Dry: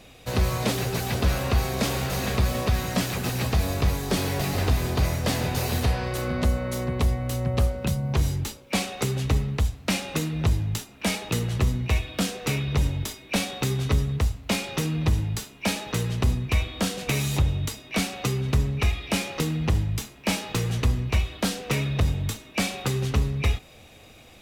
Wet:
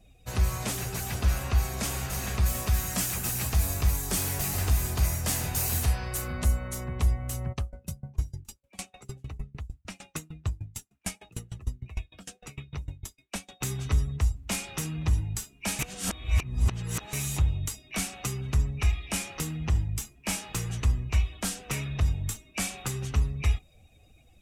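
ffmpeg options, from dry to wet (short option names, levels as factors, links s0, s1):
-filter_complex "[0:a]asettb=1/sr,asplit=3[s0][s1][s2];[s0]atrim=end=2.464[s3];[s1]atrim=start=2.46:end=6.68,asetpts=PTS-STARTPTS,afade=t=in:d=0.004:c=qsin,afade=t=out:st=4.216:d=0.004:c=qsin,highshelf=f=6300:g=6.5[s4];[s2]atrim=start=6.676[s5];[s3][s4]acrossfade=d=0.004:c1=hsin:c2=qsin[s6];[s6][s5]acrossfade=d=0.004:c1=qsin:c2=hsin,asplit=3[s7][s8][s9];[s7]afade=t=out:st=7.52:d=0.02[s10];[s8]aeval=exprs='val(0)*pow(10,-28*if(lt(mod(6.6*n/s,1),2*abs(6.6)/1000),1-mod(6.6*n/s,1)/(2*abs(6.6)/1000),(mod(6.6*n/s,1)-2*abs(6.6)/1000)/(1-2*abs(6.6)/1000))/20)':c=same,afade=t=in:st=7.52:d=0.02,afade=t=out:st=13.6:d=0.02[s11];[s9]afade=t=in:st=13.6:d=0.02[s12];[s10][s11][s12]amix=inputs=3:normalize=0,asplit=3[s13][s14][s15];[s13]atrim=end=15.792[s16];[s14]atrim=start=15.788:end=17.132,asetpts=PTS-STARTPTS,areverse[s17];[s15]atrim=start=17.128[s18];[s16][s17]acrossfade=d=0.004:c1=hsin:c2=hsin[s19];[s19][s18]acrossfade=d=0.004:c1=hsin:c2=hsin,afftdn=nr=16:nf=-46,equalizer=f=125:t=o:w=1:g=-6,equalizer=f=250:t=o:w=1:g=-8,equalizer=f=500:t=o:w=1:g=-11,equalizer=f=1000:t=o:w=1:g=-4,equalizer=f=2000:t=o:w=1:g=-4,equalizer=f=4000:t=o:w=1:g=-9,equalizer=f=8000:t=o:w=1:g=4,volume=1.12"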